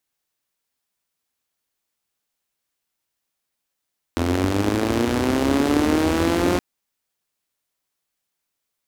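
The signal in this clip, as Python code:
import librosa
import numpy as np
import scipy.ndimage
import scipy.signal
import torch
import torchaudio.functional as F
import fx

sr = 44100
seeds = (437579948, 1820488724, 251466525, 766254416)

y = fx.engine_four_rev(sr, seeds[0], length_s=2.42, rpm=2500, resonances_hz=(83.0, 270.0), end_rpm=5400)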